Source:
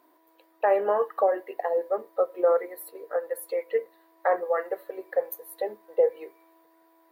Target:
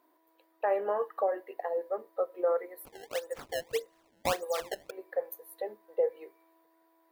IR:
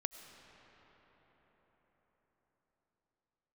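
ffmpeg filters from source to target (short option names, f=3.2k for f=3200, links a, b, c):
-filter_complex "[0:a]asettb=1/sr,asplit=3[a][b][c];[a]atrim=end=2.854[d];[b]atrim=start=2.85:end=4.91,asetpts=PTS-STARTPTS,afade=t=in:d=0.004:c=qsin,afade=t=out:st=2.056:d=0.004:c=qsin,acrusher=samples=21:mix=1:aa=0.000001:lfo=1:lforange=33.6:lforate=1.7[e];[c]atrim=start=4.906[f];[d][e]acrossfade=d=0.004:c1=hsin:c2=qsin[g];[g][f]acrossfade=d=0.004:c1=qsin:c2=hsin,volume=-6.5dB"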